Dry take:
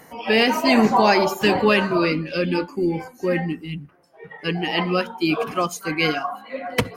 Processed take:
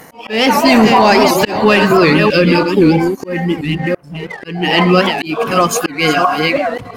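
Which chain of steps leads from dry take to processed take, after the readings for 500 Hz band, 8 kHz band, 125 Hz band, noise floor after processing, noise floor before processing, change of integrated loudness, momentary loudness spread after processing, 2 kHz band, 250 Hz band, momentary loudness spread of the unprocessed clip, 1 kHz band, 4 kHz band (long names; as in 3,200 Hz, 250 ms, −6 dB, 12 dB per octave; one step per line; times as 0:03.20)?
+8.5 dB, +12.5 dB, +10.5 dB, −37 dBFS, −50 dBFS, +8.5 dB, 11 LU, +8.0 dB, +9.0 dB, 12 LU, +9.0 dB, +8.5 dB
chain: delay that plays each chunk backwards 329 ms, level −8.5 dB
leveller curve on the samples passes 1
volume swells 381 ms
boost into a limiter +11 dB
wow of a warped record 78 rpm, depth 160 cents
level −1 dB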